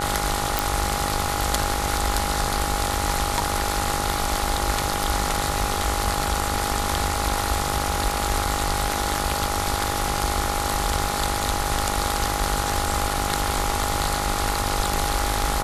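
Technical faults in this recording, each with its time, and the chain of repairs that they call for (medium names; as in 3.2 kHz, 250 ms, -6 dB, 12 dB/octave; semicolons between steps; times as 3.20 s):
buzz 50 Hz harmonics 29 -29 dBFS
whine 820 Hz -29 dBFS
0.59 s: pop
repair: de-click; band-stop 820 Hz, Q 30; de-hum 50 Hz, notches 29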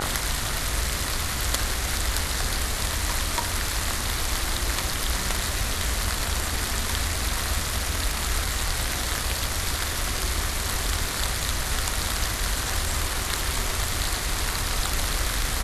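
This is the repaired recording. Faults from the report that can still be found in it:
nothing left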